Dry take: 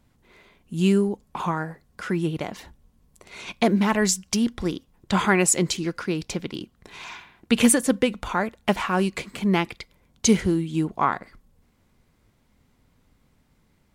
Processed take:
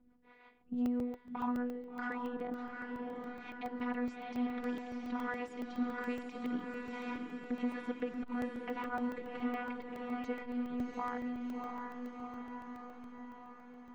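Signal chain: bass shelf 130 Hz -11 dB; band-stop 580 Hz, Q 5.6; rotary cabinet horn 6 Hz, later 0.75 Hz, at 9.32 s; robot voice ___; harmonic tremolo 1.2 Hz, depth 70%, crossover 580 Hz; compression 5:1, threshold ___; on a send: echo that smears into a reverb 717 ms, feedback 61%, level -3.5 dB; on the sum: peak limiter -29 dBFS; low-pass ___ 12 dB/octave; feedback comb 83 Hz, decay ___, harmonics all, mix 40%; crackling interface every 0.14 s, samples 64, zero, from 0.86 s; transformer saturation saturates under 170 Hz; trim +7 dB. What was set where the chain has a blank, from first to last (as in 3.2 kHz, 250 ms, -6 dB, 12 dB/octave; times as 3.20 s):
245 Hz, -38 dBFS, 1.6 kHz, 0.16 s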